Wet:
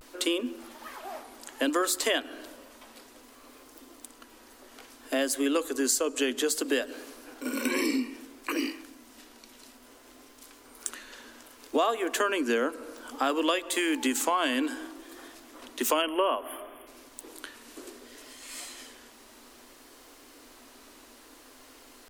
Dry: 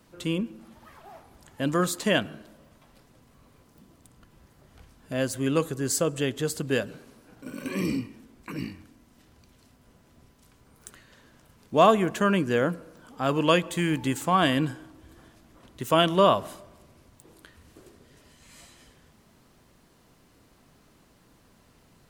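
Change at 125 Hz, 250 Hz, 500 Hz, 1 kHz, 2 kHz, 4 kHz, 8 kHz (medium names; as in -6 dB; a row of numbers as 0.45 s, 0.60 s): under -30 dB, -2.5 dB, -3.5 dB, -4.5 dB, 0.0 dB, 0.0 dB, +4.0 dB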